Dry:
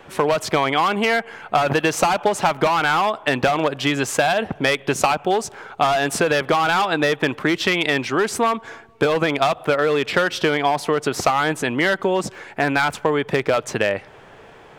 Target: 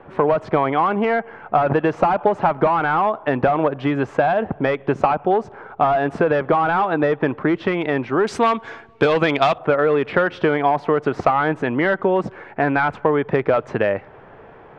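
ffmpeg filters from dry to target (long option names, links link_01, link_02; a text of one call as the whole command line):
ffmpeg -i in.wav -af "asetnsamples=nb_out_samples=441:pad=0,asendcmd='8.27 lowpass f 4000;9.58 lowpass f 1600',lowpass=1300,volume=2dB" out.wav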